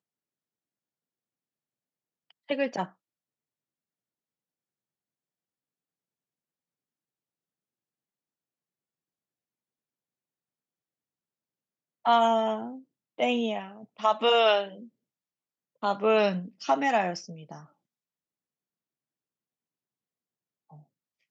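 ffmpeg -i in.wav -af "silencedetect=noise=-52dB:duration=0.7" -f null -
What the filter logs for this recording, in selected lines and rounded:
silence_start: 0.00
silence_end: 2.31 | silence_duration: 2.31
silence_start: 2.92
silence_end: 12.05 | silence_duration: 9.13
silence_start: 14.89
silence_end: 15.82 | silence_duration: 0.94
silence_start: 17.67
silence_end: 20.70 | silence_duration: 3.04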